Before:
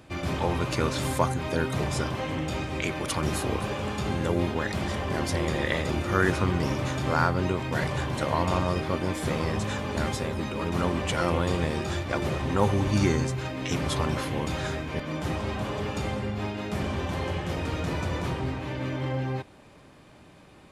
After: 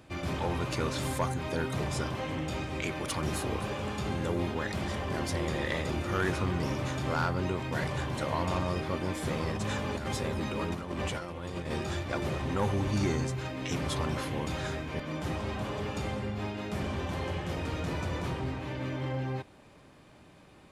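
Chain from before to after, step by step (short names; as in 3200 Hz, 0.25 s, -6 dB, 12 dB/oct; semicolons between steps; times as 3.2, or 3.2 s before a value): 9.49–11.78 negative-ratio compressor -29 dBFS, ratio -0.5; soft clip -17 dBFS, distortion -17 dB; gain -3.5 dB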